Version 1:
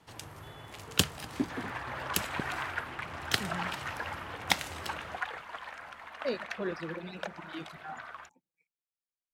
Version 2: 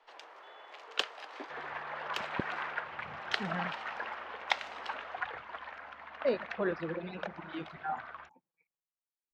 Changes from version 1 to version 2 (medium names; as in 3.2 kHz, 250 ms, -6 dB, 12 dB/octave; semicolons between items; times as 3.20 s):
speech: add peaking EQ 1 kHz +10 dB 1.7 oct; first sound: add high-pass 480 Hz 24 dB/octave; master: add distance through air 210 m